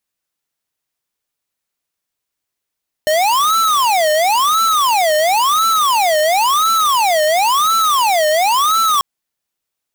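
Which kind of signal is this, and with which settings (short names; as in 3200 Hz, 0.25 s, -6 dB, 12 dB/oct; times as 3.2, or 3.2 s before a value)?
siren wail 609–1330 Hz 0.96/s square -13.5 dBFS 5.94 s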